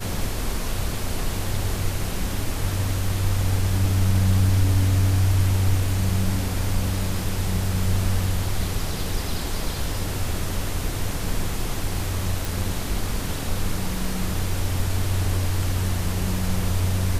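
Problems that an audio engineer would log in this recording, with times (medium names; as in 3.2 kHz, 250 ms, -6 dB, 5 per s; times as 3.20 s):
12.45 s: pop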